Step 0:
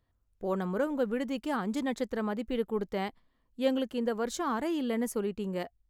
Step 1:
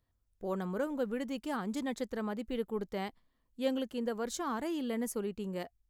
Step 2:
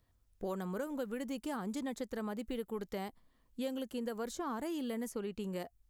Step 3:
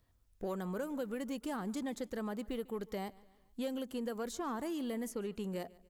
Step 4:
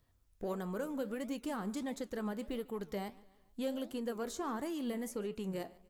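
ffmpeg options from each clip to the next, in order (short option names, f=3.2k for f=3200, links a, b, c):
-af "bass=f=250:g=1,treble=f=4k:g=4,volume=-4.5dB"
-filter_complex "[0:a]acrossover=split=1300|6500[a][b][c];[a]acompressor=threshold=-43dB:ratio=4[d];[b]acompressor=threshold=-58dB:ratio=4[e];[c]acompressor=threshold=-59dB:ratio=4[f];[d][e][f]amix=inputs=3:normalize=0,volume=5.5dB"
-filter_complex "[0:a]asplit=2[a][b];[b]asoftclip=type=hard:threshold=-39dB,volume=-10dB[c];[a][c]amix=inputs=2:normalize=0,aecho=1:1:146|292|438:0.075|0.0367|0.018,volume=-1.5dB"
-af "flanger=delay=6.9:depth=8.2:regen=77:speed=1.5:shape=sinusoidal,volume=4.5dB"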